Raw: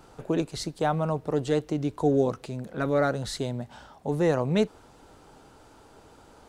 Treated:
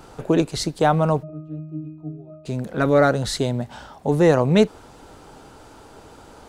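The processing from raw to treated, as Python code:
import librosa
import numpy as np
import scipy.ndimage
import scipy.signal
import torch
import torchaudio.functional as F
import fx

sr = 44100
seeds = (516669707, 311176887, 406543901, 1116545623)

y = fx.octave_resonator(x, sr, note='D#', decay_s=0.76, at=(1.22, 2.45), fade=0.02)
y = y * 10.0 ** (8.0 / 20.0)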